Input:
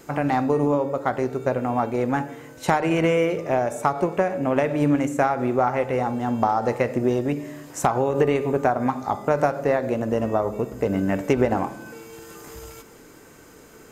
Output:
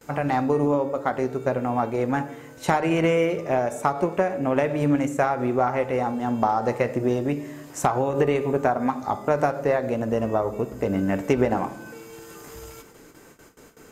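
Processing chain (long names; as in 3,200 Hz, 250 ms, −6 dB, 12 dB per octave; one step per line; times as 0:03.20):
noise gate with hold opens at −37 dBFS
flanger 0.2 Hz, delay 1.2 ms, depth 6.3 ms, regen −82%
level +3.5 dB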